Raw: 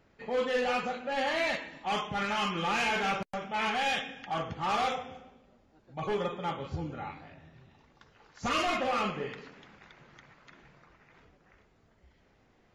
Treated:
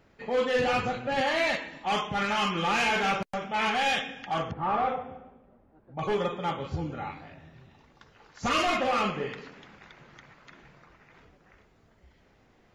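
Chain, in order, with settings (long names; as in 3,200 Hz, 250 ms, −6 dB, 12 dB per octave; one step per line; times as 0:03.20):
0:00.58–0:01.21: sub-octave generator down 1 octave, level −1 dB
0:04.51–0:05.99: low-pass filter 1,400 Hz 12 dB per octave
level +3.5 dB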